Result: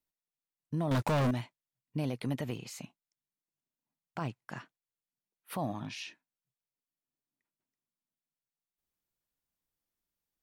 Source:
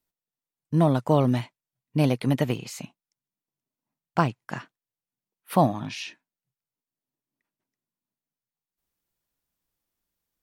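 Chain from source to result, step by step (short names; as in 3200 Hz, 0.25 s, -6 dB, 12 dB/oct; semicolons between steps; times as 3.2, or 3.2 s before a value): limiter -18 dBFS, peak gain reduction 12 dB; 0.91–1.31 sample leveller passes 5; gain -7 dB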